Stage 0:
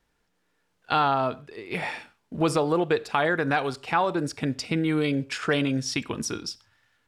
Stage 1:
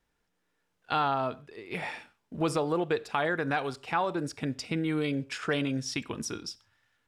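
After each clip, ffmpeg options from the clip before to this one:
-af "bandreject=f=4400:w=25,volume=0.562"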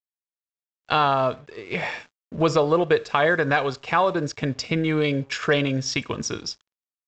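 -af "aecho=1:1:1.8:0.32,aresample=16000,aeval=exprs='sgn(val(0))*max(abs(val(0))-0.00119,0)':c=same,aresample=44100,volume=2.66"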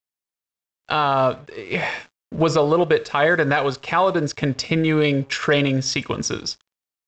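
-af "alimiter=level_in=3.35:limit=0.891:release=50:level=0:latency=1,volume=0.473"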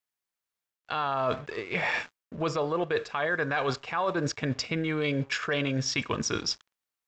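-af "equalizer=f=1500:t=o:w=1.9:g=4.5,areverse,acompressor=threshold=0.0501:ratio=6,areverse"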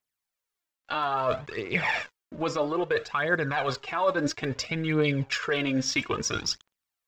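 -af "aphaser=in_gain=1:out_gain=1:delay=3.9:decay=0.55:speed=0.6:type=triangular"

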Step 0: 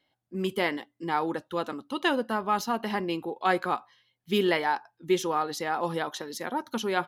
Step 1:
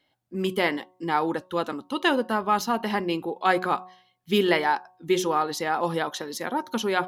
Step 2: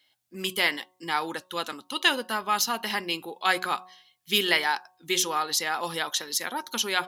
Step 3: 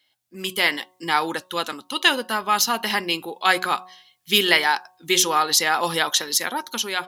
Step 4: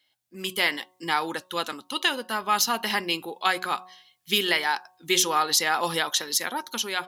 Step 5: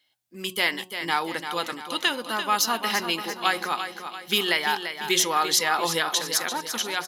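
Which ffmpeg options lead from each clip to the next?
-af "bandreject=f=183.6:t=h:w=4,bandreject=f=367.2:t=h:w=4,bandreject=f=550.8:t=h:w=4,bandreject=f=734.4:t=h:w=4,bandreject=f=918:t=h:w=4,bandreject=f=1101.6:t=h:w=4,volume=1.5"
-af "tiltshelf=f=1500:g=-10"
-af "dynaudnorm=f=140:g=9:m=2.82"
-af "alimiter=limit=0.501:level=0:latency=1:release=412,volume=0.708"
-af "aecho=1:1:342|684|1026|1368|1710:0.355|0.167|0.0784|0.0368|0.0173"

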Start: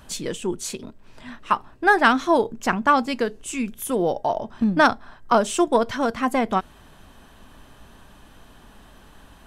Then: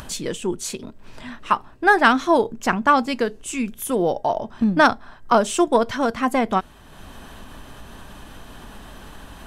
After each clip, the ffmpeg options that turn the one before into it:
-af "acompressor=mode=upward:threshold=0.0251:ratio=2.5,volume=1.19"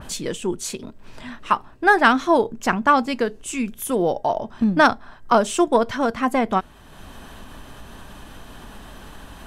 -af "adynamicequalizer=threshold=0.0224:dfrequency=2900:dqfactor=0.7:tfrequency=2900:tqfactor=0.7:attack=5:release=100:ratio=0.375:range=1.5:mode=cutabove:tftype=highshelf"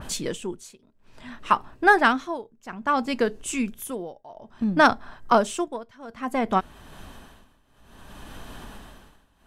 -af "tremolo=f=0.59:d=0.94"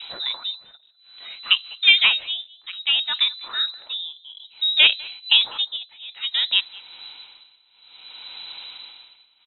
-filter_complex "[0:a]asplit=2[s0][s1];[s1]adelay=200,highpass=300,lowpass=3400,asoftclip=type=hard:threshold=0.224,volume=0.0891[s2];[s0][s2]amix=inputs=2:normalize=0,lowpass=f=3400:t=q:w=0.5098,lowpass=f=3400:t=q:w=0.6013,lowpass=f=3400:t=q:w=0.9,lowpass=f=3400:t=q:w=2.563,afreqshift=-4000,volume=1.26"

